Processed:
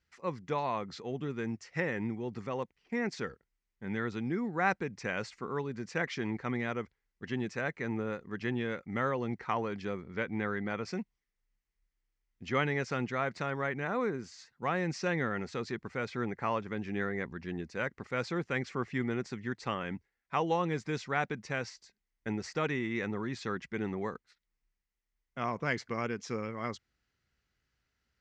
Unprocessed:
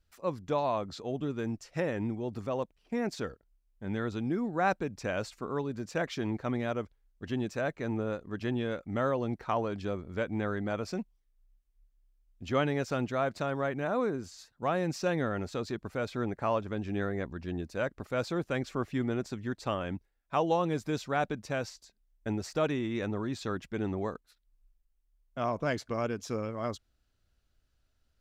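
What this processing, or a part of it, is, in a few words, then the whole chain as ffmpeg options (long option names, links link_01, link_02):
car door speaker: -filter_complex "[0:a]asettb=1/sr,asplit=3[link_01][link_02][link_03];[link_01]atrim=end=10.054[link_04];[link_02]atrim=start=10.05:end=10.85,asetpts=PTS-STARTPTS,afade=type=in:duration=0.004:curve=qsin,afade=type=out:start_time=0.796:duration=0.004:curve=qsin,lowpass=frequency=6300:width=0.5412,lowpass=frequency=6300:width=1.3066[link_05];[link_03]atrim=start=10.846[link_06];[link_04][link_05]acrossfade=duration=0.004:curve1=hsin:curve2=qsin[link_07];[link_07][link_06]acrossfade=duration=0.004:curve1=qsin:curve2=hsin,highpass=80,equalizer=frequency=92:width_type=q:width=4:gain=-8,equalizer=frequency=290:width_type=q:width=4:gain=-5,equalizer=frequency=620:width_type=q:width=4:gain=-9,equalizer=frequency=2000:width_type=q:width=4:gain=9,equalizer=frequency=3700:width_type=q:width=4:gain=-4,lowpass=frequency=6800:width=0.5412,lowpass=frequency=6800:width=1.3066"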